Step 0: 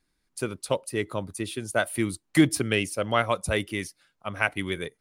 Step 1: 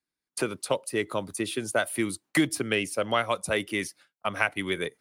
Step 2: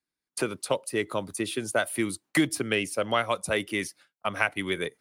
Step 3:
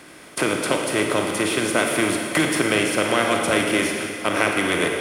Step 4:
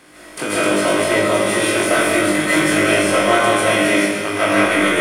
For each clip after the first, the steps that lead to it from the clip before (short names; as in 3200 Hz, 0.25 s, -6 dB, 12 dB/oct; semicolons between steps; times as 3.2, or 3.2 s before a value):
HPF 230 Hz 6 dB/oct; expander -49 dBFS; three-band squash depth 70%
nothing audible
per-bin compression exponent 0.4; Schroeder reverb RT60 2.2 s, DRR 2 dB; short-mantissa float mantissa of 6-bit
on a send: flutter echo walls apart 3.4 m, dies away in 0.3 s; on the sum: digital reverb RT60 0.64 s, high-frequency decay 0.45×, pre-delay 0.105 s, DRR -7 dB; gain -4.5 dB